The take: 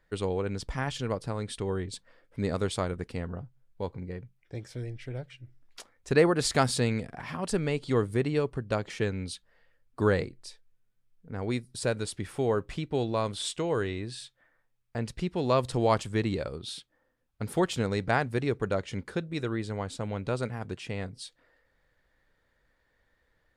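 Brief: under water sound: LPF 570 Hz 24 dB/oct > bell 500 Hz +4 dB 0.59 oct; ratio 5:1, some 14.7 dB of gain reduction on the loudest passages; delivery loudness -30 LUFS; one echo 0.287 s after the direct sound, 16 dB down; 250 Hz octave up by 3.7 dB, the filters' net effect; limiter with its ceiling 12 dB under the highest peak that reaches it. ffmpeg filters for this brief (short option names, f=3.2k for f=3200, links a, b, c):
-af "equalizer=f=250:t=o:g=4.5,acompressor=threshold=-32dB:ratio=5,alimiter=level_in=8dB:limit=-24dB:level=0:latency=1,volume=-8dB,lowpass=f=570:w=0.5412,lowpass=f=570:w=1.3066,equalizer=f=500:t=o:w=0.59:g=4,aecho=1:1:287:0.158,volume=12.5dB"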